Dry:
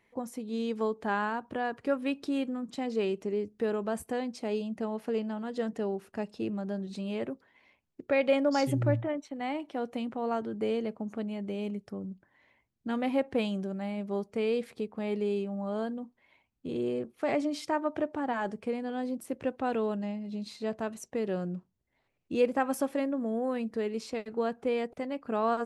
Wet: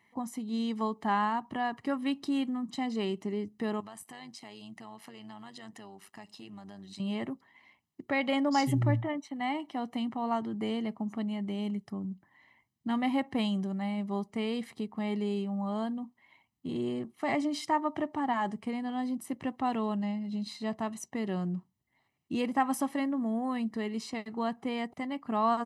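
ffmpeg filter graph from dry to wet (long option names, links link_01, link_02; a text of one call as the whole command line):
ffmpeg -i in.wav -filter_complex "[0:a]asettb=1/sr,asplit=3[link_01][link_02][link_03];[link_01]atrim=end=3.804[link_04];[link_02]atrim=start=3.8:end=7,asetpts=PTS-STARTPTS,afade=type=in:duration=0.004:curve=qsin,afade=type=out:start_time=3.196:duration=0.004:curve=qsin,tiltshelf=frequency=820:gain=-7,acompressor=threshold=-45dB:ratio=2.5:attack=3.2:release=140:knee=1:detection=peak,tremolo=f=100:d=0.621[link_05];[link_03]atrim=start=6.996[link_06];[link_04][link_05]acrossfade=duration=0.004:curve1=hsin:curve2=qsin[link_07];[link_07][link_06]acrossfade=duration=0.004:curve1=qsin:curve2=hsin,highpass=110,aecho=1:1:1:0.71" out.wav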